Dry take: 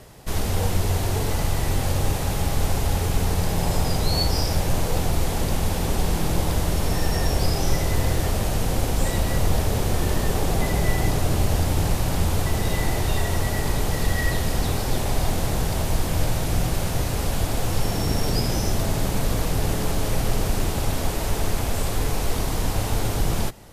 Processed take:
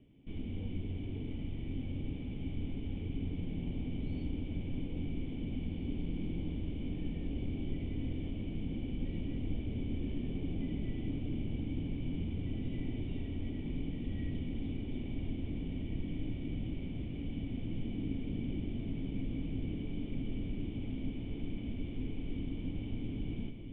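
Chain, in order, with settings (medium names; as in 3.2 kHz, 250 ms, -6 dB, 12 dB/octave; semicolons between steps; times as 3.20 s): cascade formant filter i; distance through air 67 m; echo that smears into a reverb 1901 ms, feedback 69%, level -9 dB; trim -4 dB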